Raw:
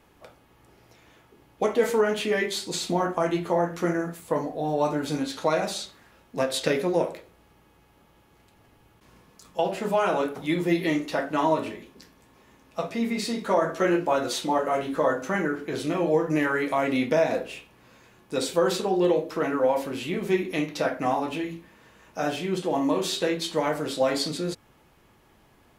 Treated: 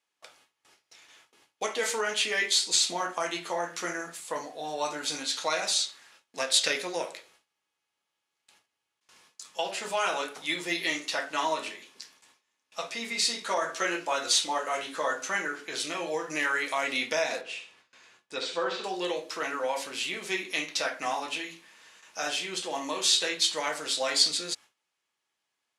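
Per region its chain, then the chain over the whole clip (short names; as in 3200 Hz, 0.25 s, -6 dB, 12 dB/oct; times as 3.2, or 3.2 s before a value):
17.41–18.84 treble ducked by the level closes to 2600 Hz, closed at -21 dBFS + high shelf 5100 Hz -11 dB + flutter echo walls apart 11.5 m, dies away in 0.41 s
whole clip: gate with hold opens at -44 dBFS; weighting filter ITU-R 468; gain -3.5 dB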